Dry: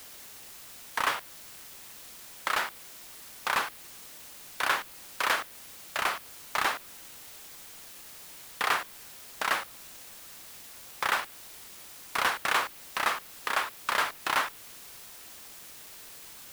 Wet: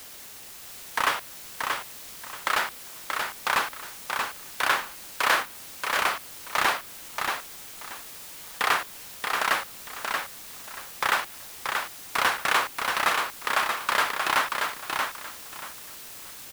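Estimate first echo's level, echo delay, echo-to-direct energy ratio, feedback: -4.5 dB, 0.631 s, -4.5 dB, 23%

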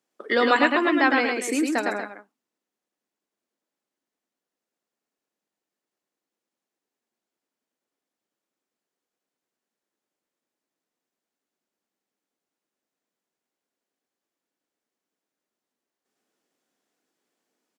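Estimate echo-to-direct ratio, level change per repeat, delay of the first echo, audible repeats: -3.0 dB, no steady repeat, 0.108 s, 2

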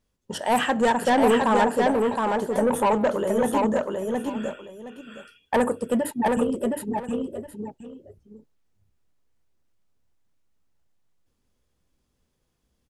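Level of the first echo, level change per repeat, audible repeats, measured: -3.0 dB, -13.0 dB, 2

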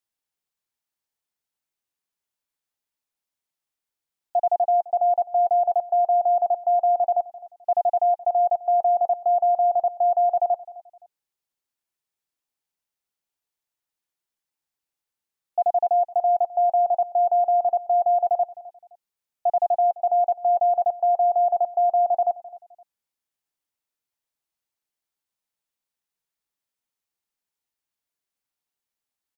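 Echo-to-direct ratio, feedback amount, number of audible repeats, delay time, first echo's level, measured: -18.0 dB, 28%, 2, 0.259 s, -18.5 dB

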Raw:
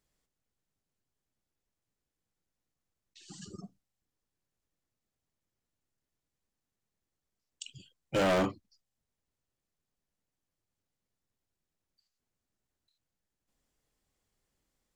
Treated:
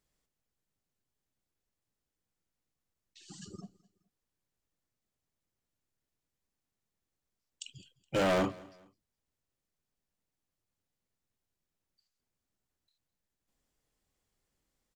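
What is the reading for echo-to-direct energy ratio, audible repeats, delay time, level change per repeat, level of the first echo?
-22.0 dB, 2, 0.21 s, -9.5 dB, -22.5 dB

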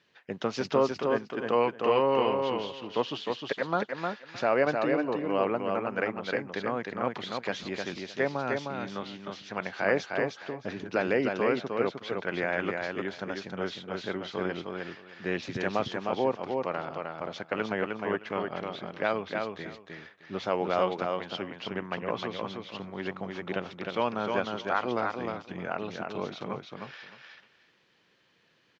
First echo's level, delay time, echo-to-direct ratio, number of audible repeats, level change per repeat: -4.0 dB, 0.308 s, -4.0 dB, 3, -15.5 dB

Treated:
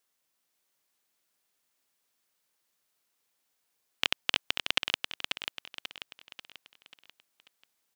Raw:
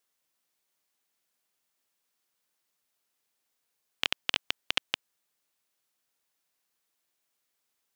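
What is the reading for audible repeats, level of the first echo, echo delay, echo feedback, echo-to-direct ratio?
5, -6.0 dB, 0.539 s, 44%, -5.0 dB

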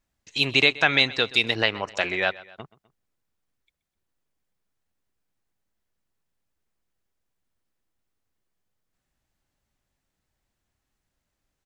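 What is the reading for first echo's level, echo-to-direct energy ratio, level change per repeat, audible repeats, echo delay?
-20.0 dB, -19.0 dB, -5.5 dB, 2, 0.127 s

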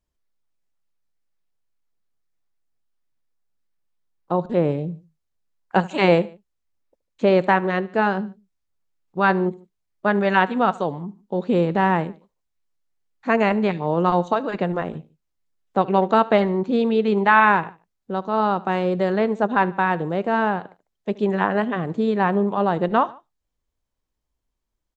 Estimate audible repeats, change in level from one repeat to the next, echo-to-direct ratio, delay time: 2, -6.0 dB, -20.0 dB, 74 ms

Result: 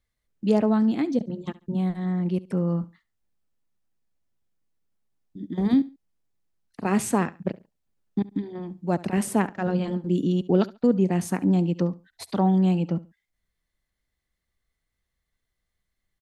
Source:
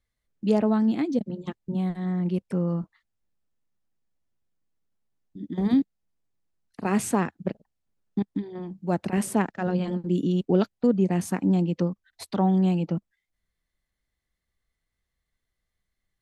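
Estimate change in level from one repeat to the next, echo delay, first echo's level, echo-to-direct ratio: -12.5 dB, 70 ms, -19.5 dB, -19.0 dB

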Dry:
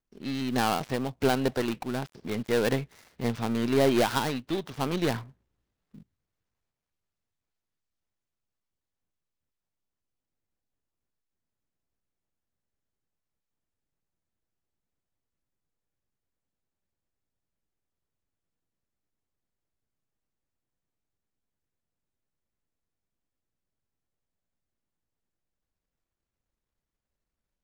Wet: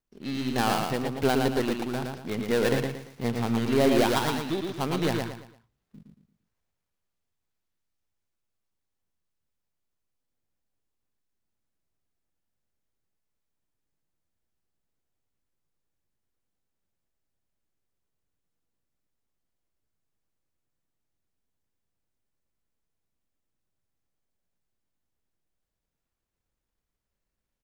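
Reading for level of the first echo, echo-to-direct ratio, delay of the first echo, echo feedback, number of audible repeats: -4.0 dB, -3.5 dB, 0.114 s, 34%, 4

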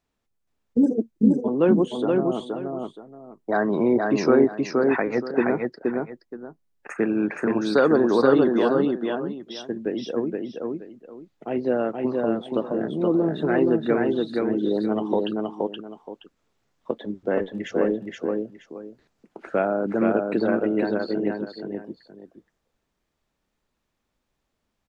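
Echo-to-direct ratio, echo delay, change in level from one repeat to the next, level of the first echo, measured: -2.5 dB, 0.473 s, -12.0 dB, -3.0 dB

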